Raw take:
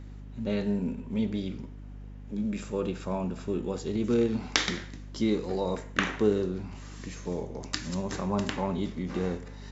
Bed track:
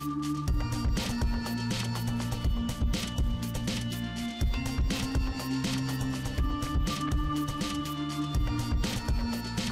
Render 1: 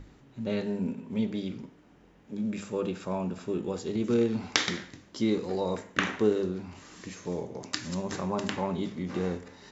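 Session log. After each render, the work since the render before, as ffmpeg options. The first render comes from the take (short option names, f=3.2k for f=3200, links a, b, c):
-af "bandreject=f=50:t=h:w=6,bandreject=f=100:t=h:w=6,bandreject=f=150:t=h:w=6,bandreject=f=200:t=h:w=6,bandreject=f=250:t=h:w=6"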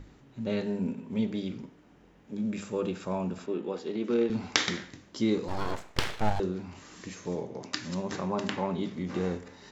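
-filter_complex "[0:a]asettb=1/sr,asplit=3[a][b][c];[a]atrim=end=3.464[d];[b]atrim=start=3.46:end=4.3,asetpts=PTS-STARTPTS,afade=t=in:d=0.004:c=qsin,afade=t=out:st=0.836:d=0.004:c=qsin,acrossover=split=200 5000:gain=0.0891 1 0.1[e][f][g];[e][f][g]amix=inputs=3:normalize=0[h];[c]atrim=start=4.296[i];[d][h]acrossfade=d=0.004:c1=hsin:c2=qsin[j];[j][i]acrossfade=d=0.004:c1=qsin:c2=hsin,asettb=1/sr,asplit=3[k][l][m];[k]atrim=end=5.484[n];[l]atrim=start=5.48:end=6.4,asetpts=PTS-STARTPTS,afade=t=in:d=0.004:c=qsin,afade=t=out:st=0.916:d=0.004:c=qsin,aeval=exprs='abs(val(0))':c=same[o];[m]atrim=start=6.396[p];[n][o]acrossfade=d=0.004:c1=hsin:c2=qsin[q];[q][p]acrossfade=d=0.004:c1=qsin:c2=hsin,asettb=1/sr,asplit=3[r][s][t];[r]atrim=end=7.354[u];[s]atrim=start=7.35:end=8.93,asetpts=PTS-STARTPTS,afade=t=in:d=0.004:c=qsin,afade=t=out:st=1.576:d=0.004:c=qsin,highpass=100,lowpass=6.2k[v];[t]atrim=start=8.926[w];[u][v]acrossfade=d=0.004:c1=hsin:c2=qsin[x];[x][w]acrossfade=d=0.004:c1=qsin:c2=hsin"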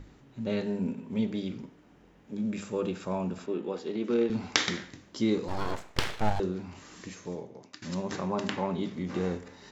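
-filter_complex "[0:a]asplit=2[a][b];[a]atrim=end=7.82,asetpts=PTS-STARTPTS,afade=t=out:st=6.98:d=0.84:silence=0.112202[c];[b]atrim=start=7.82,asetpts=PTS-STARTPTS,afade=t=in:d=0.004:c=hsin:silence=0.112202[d];[c][d]concat=n=2:v=0:a=1"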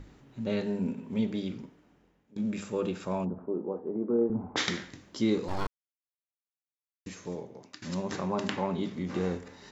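-filter_complex "[0:a]asplit=3[a][b][c];[a]afade=t=out:st=3.24:d=0.02[d];[b]lowpass=f=1k:w=0.5412,lowpass=f=1k:w=1.3066,afade=t=in:st=3.24:d=0.02,afade=t=out:st=4.56:d=0.02[e];[c]afade=t=in:st=4.56:d=0.02[f];[d][e][f]amix=inputs=3:normalize=0,asplit=4[g][h][i][j];[g]atrim=end=2.36,asetpts=PTS-STARTPTS,afade=t=out:st=1.49:d=0.87:silence=0.1[k];[h]atrim=start=2.36:end=5.67,asetpts=PTS-STARTPTS,afade=t=in:d=0.004:c=hsin:silence=0.1,afade=t=out:st=3.306:d=0.004:c=hsin[l];[i]atrim=start=5.67:end=7.06,asetpts=PTS-STARTPTS,volume=0[m];[j]atrim=start=7.06,asetpts=PTS-STARTPTS,afade=t=in:d=0.004:c=hsin[n];[k][l][m][n]concat=n=4:v=0:a=1"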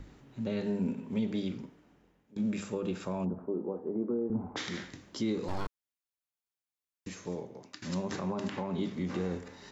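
-filter_complex "[0:a]alimiter=limit=-22dB:level=0:latency=1:release=110,acrossover=split=340[a][b];[b]acompressor=threshold=-35dB:ratio=6[c];[a][c]amix=inputs=2:normalize=0"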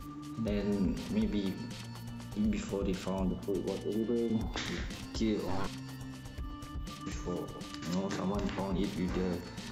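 -filter_complex "[1:a]volume=-12.5dB[a];[0:a][a]amix=inputs=2:normalize=0"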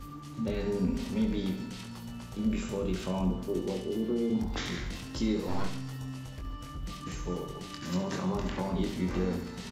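-filter_complex "[0:a]asplit=2[a][b];[b]adelay=22,volume=-5dB[c];[a][c]amix=inputs=2:normalize=0,aecho=1:1:69|138|207|276|345:0.316|0.158|0.0791|0.0395|0.0198"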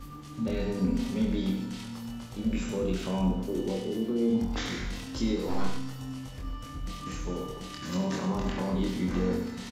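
-filter_complex "[0:a]asplit=2[a][b];[b]adelay=26,volume=-5dB[c];[a][c]amix=inputs=2:normalize=0,asplit=2[d][e];[e]adelay=99.13,volume=-9dB,highshelf=f=4k:g=-2.23[f];[d][f]amix=inputs=2:normalize=0"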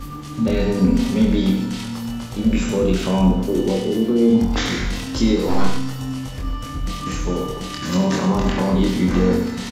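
-af "volume=11.5dB"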